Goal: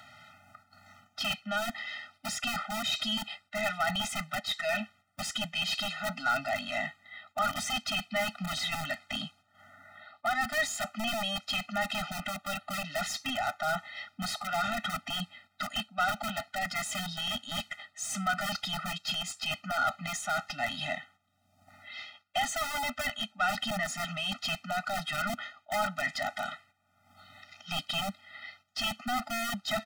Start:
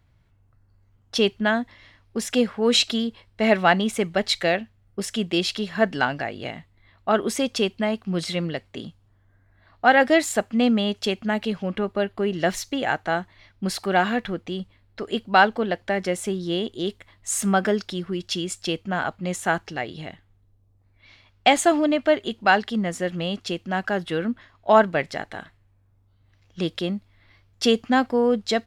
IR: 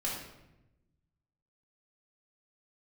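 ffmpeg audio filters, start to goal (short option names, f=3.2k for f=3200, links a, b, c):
-filter_complex "[0:a]highpass=180,highshelf=f=2.3k:g=10,areverse,acompressor=threshold=-27dB:ratio=5,areverse,asetrate=42336,aresample=44100,equalizer=f=1.2k:w=1.6:g=6,asplit=2[a][b];[b]highpass=f=720:p=1,volume=19dB,asoftclip=type=tanh:threshold=-15.5dB[c];[a][c]amix=inputs=2:normalize=0,lowpass=f=2.7k:p=1,volume=-6dB,acrossover=split=750|880[d][e][f];[d]aeval=exprs='(mod(16.8*val(0)+1,2)-1)/16.8':c=same[g];[g][e][f]amix=inputs=3:normalize=0,acompressor=mode=upward:threshold=-38dB:ratio=2.5,agate=range=-9dB:threshold=-51dB:ratio=16:detection=peak,afftfilt=real='re*eq(mod(floor(b*sr/1024/300),2),0)':imag='im*eq(mod(floor(b*sr/1024/300),2),0)':win_size=1024:overlap=0.75,volume=-3dB"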